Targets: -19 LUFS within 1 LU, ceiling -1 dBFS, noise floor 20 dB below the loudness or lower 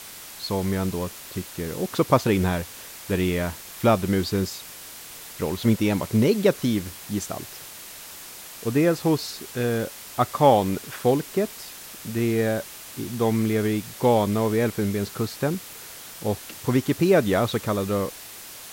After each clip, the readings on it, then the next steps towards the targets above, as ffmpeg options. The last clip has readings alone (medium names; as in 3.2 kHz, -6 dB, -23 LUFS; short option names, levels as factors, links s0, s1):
noise floor -41 dBFS; noise floor target -45 dBFS; loudness -24.5 LUFS; peak level -4.0 dBFS; loudness target -19.0 LUFS
-> -af "afftdn=nr=6:nf=-41"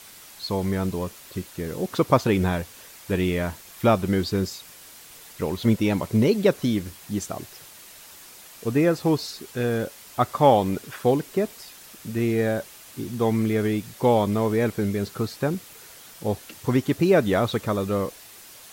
noise floor -46 dBFS; loudness -24.5 LUFS; peak level -4.0 dBFS; loudness target -19.0 LUFS
-> -af "volume=1.88,alimiter=limit=0.891:level=0:latency=1"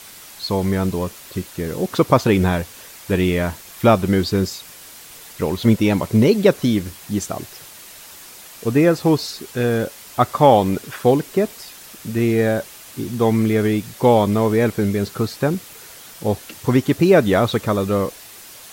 loudness -19.0 LUFS; peak level -1.0 dBFS; noise floor -41 dBFS